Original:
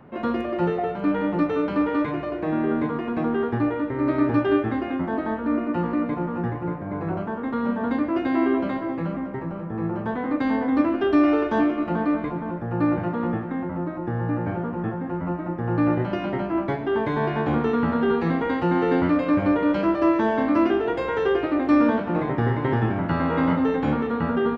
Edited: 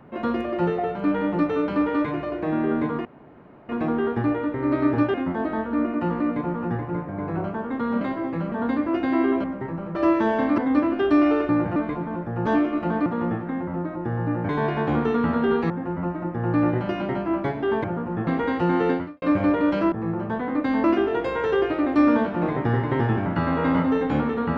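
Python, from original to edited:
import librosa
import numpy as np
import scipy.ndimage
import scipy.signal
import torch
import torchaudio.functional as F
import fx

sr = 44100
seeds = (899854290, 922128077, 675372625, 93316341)

y = fx.edit(x, sr, fx.insert_room_tone(at_s=3.05, length_s=0.64),
    fx.cut(start_s=4.5, length_s=0.37),
    fx.move(start_s=8.66, length_s=0.51, to_s=7.74),
    fx.swap(start_s=9.68, length_s=0.92, other_s=19.94, other_length_s=0.63),
    fx.swap(start_s=11.51, length_s=0.6, other_s=12.81, other_length_s=0.27),
    fx.swap(start_s=14.51, length_s=0.43, other_s=17.08, other_length_s=1.21),
    fx.fade_out_span(start_s=18.91, length_s=0.33, curve='qua'), tone=tone)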